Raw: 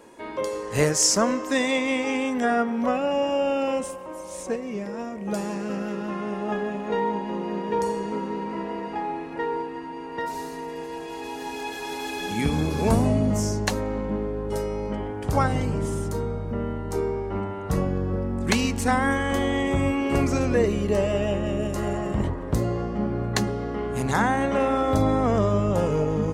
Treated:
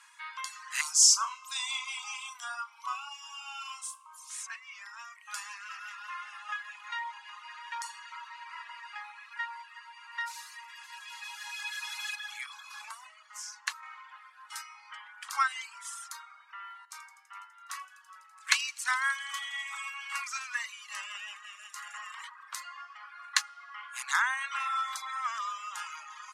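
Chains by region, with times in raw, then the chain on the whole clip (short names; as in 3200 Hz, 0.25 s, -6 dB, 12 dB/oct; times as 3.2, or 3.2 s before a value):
0.81–4.3 fixed phaser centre 360 Hz, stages 8 + flutter echo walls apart 6 m, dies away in 0.33 s
12.15–13.83 high shelf 2200 Hz -6.5 dB + compressor 2.5:1, threshold -24 dBFS
16.85–21.94 thin delay 83 ms, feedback 82%, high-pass 3500 Hz, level -10.5 dB + upward expander, over -32 dBFS
whole clip: steep high-pass 1100 Hz 48 dB/oct; reverb removal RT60 1 s; LPF 11000 Hz 12 dB/oct; gain +1.5 dB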